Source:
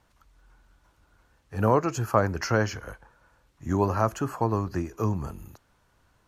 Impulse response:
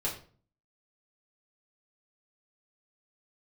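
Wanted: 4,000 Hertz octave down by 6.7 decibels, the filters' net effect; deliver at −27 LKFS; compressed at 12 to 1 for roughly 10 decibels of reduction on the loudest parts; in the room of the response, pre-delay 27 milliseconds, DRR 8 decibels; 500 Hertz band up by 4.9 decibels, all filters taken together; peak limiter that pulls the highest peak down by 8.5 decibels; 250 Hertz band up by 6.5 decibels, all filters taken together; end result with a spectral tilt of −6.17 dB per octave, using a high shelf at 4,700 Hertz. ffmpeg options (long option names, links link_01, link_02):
-filter_complex "[0:a]equalizer=frequency=250:width_type=o:gain=7.5,equalizer=frequency=500:width_type=o:gain=4,equalizer=frequency=4000:width_type=o:gain=-4.5,highshelf=frequency=4700:gain=-8,acompressor=threshold=-22dB:ratio=12,alimiter=limit=-18dB:level=0:latency=1,asplit=2[link_01][link_02];[1:a]atrim=start_sample=2205,adelay=27[link_03];[link_02][link_03]afir=irnorm=-1:irlink=0,volume=-13dB[link_04];[link_01][link_04]amix=inputs=2:normalize=0,volume=3.5dB"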